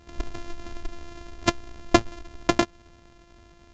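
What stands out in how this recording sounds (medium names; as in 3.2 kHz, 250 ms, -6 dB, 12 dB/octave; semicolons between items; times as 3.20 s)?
a buzz of ramps at a fixed pitch in blocks of 128 samples; A-law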